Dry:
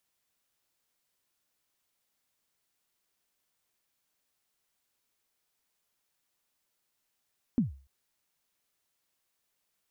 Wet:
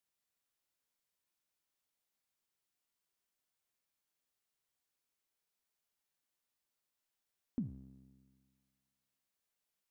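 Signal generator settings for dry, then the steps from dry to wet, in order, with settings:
kick drum length 0.29 s, from 270 Hz, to 68 Hz, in 137 ms, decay 0.38 s, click off, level -19 dB
feedback comb 66 Hz, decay 1.7 s, harmonics all, mix 70%

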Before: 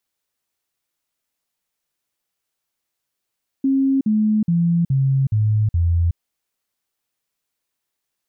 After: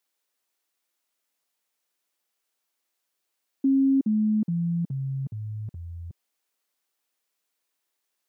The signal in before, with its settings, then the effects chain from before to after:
stepped sine 270 Hz down, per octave 3, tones 6, 0.37 s, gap 0.05 s -14 dBFS
high-pass 270 Hz 12 dB/octave

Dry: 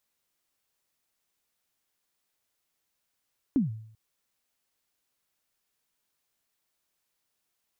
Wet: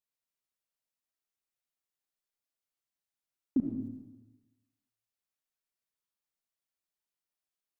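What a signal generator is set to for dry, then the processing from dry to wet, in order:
kick drum length 0.39 s, from 300 Hz, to 110 Hz, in 140 ms, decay 0.64 s, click off, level -18 dB
dynamic bell 130 Hz, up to +8 dB, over -48 dBFS, Q 2.7; level held to a coarse grid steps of 24 dB; algorithmic reverb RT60 1.1 s, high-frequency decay 1×, pre-delay 30 ms, DRR 2 dB

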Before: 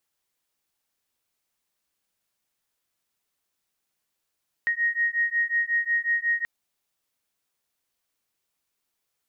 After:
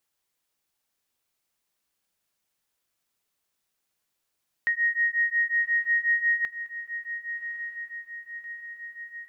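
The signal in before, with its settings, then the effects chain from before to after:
beating tones 1.87 kHz, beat 5.5 Hz, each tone -25 dBFS 1.78 s
echo that smears into a reverb 1146 ms, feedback 59%, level -10.5 dB

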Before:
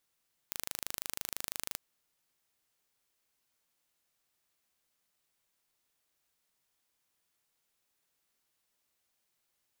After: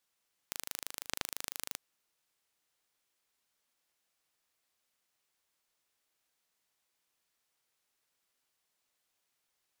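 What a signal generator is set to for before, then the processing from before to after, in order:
pulse train 26 per s, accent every 0, -9 dBFS 1.26 s
bass shelf 250 Hz -8 dB; delay time shaken by noise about 1.2 kHz, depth 0.033 ms

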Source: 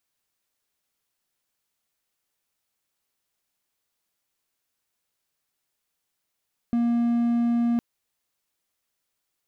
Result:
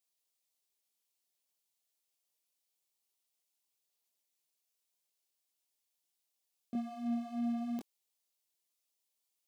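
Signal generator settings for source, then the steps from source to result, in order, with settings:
tone triangle 236 Hz -17.5 dBFS 1.06 s
chorus voices 4, 0.92 Hz, delay 22 ms, depth 3.5 ms; high-pass 710 Hz 6 dB/octave; peaking EQ 1.5 kHz -13 dB 1.2 oct

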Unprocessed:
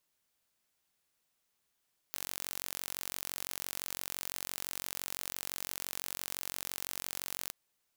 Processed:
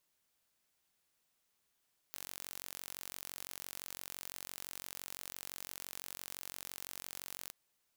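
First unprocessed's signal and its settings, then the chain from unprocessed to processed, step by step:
pulse train 45.9 per s, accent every 0, -11 dBFS 5.37 s
saturation -17.5 dBFS

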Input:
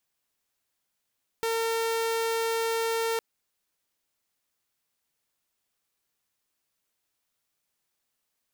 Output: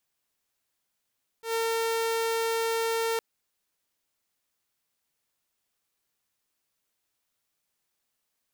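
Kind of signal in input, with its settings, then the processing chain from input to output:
tone saw 455 Hz -23 dBFS 1.76 s
slow attack 114 ms

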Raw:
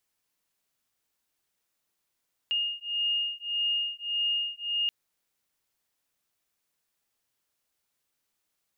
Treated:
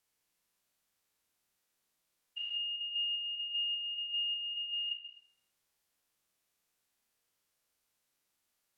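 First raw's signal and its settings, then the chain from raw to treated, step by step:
beating tones 2.84 kHz, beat 1.7 Hz, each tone -30 dBFS 2.38 s
spectrogram pixelated in time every 200 ms; Schroeder reverb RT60 0.57 s, combs from 32 ms, DRR 4.5 dB; low-pass that closes with the level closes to 2.3 kHz, closed at -31 dBFS

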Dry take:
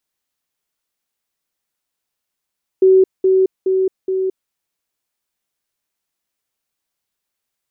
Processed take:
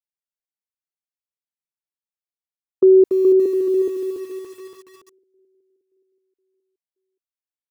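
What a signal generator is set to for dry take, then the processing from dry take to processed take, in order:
level ladder 378 Hz -6.5 dBFS, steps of -3 dB, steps 4, 0.22 s 0.20 s
feedback delay 576 ms, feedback 49%, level -12 dB; gate -17 dBFS, range -23 dB; bit-crushed delay 285 ms, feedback 55%, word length 7-bit, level -7 dB

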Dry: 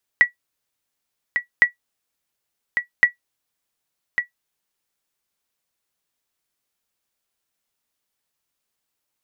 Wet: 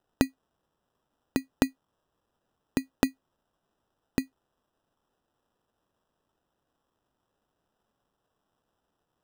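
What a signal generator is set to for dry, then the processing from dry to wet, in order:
sonar ping 1.94 kHz, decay 0.12 s, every 1.41 s, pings 3, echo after 1.15 s, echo -8 dB -3.5 dBFS
dynamic bell 1.9 kHz, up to -5 dB, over -26 dBFS; compression, threshold -18 dBFS; sample-and-hold 20×

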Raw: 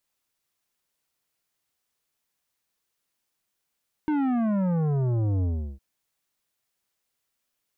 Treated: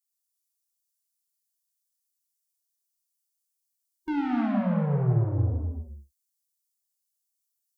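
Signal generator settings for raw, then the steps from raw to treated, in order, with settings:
sub drop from 310 Hz, over 1.71 s, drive 11.5 dB, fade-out 0.36 s, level -23 dB
expander on every frequency bin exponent 1.5; saturation -26.5 dBFS; gated-style reverb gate 340 ms flat, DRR -1 dB

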